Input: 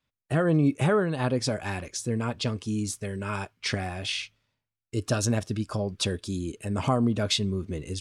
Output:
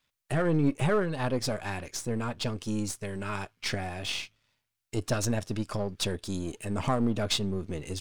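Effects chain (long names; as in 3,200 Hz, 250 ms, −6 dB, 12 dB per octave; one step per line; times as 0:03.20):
gain on one half-wave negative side −7 dB
one half of a high-frequency compander encoder only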